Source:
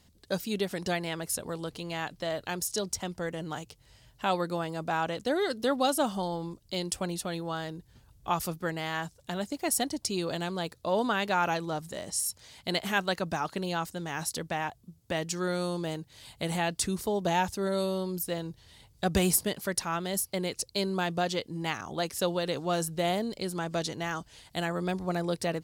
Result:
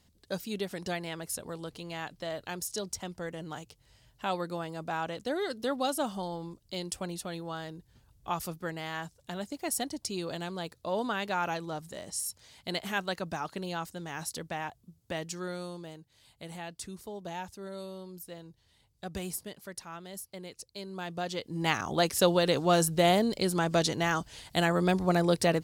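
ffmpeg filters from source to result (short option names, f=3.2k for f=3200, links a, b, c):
-af "volume=13dB,afade=t=out:st=15.11:d=0.83:silence=0.398107,afade=t=in:st=20.85:d=0.58:silence=0.375837,afade=t=in:st=21.43:d=0.31:silence=0.375837"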